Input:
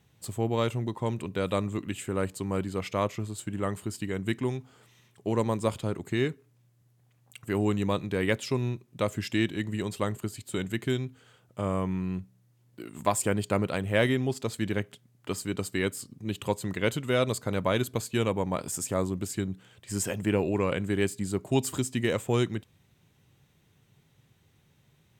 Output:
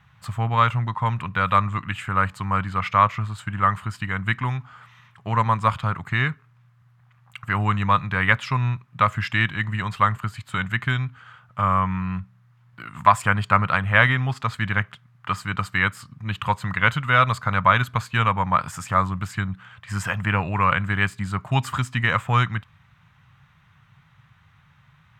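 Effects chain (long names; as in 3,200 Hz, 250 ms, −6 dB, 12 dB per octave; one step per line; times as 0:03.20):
drawn EQ curve 150 Hz 0 dB, 370 Hz −21 dB, 1,200 Hz +11 dB, 8,400 Hz −16 dB
level +8.5 dB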